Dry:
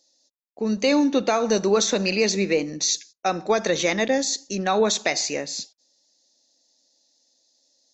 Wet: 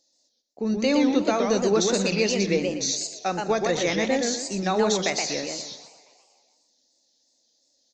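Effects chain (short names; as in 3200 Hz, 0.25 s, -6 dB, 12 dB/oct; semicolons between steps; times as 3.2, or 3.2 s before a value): low shelf 170 Hz +7.5 dB; frequency-shifting echo 0.2 s, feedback 65%, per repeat +57 Hz, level -23.5 dB; warbling echo 0.123 s, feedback 33%, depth 205 cents, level -4 dB; gain -4 dB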